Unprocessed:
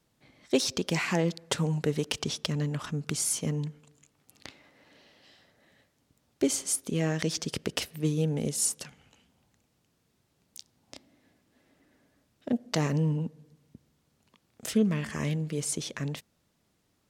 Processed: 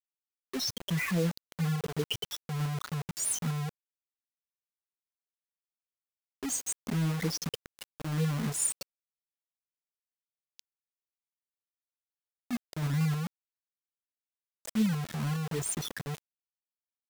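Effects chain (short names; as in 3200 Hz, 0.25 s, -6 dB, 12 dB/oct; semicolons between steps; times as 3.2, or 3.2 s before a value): spectral contrast raised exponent 3.4; auto swell 0.12 s; requantised 6-bit, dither none; gain -1 dB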